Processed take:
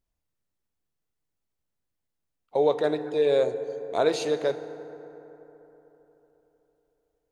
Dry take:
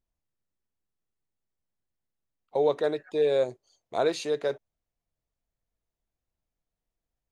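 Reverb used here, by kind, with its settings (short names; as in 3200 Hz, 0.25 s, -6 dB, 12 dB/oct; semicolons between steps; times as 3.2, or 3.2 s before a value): FDN reverb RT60 3.8 s, high-frequency decay 0.4×, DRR 10 dB; gain +2 dB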